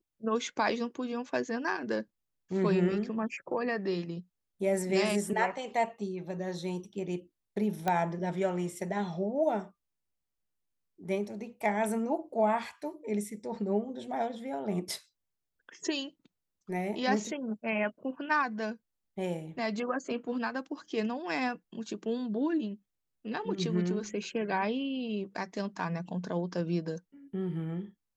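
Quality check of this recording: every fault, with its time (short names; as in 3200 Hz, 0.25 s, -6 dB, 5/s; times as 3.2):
7.88 pop -16 dBFS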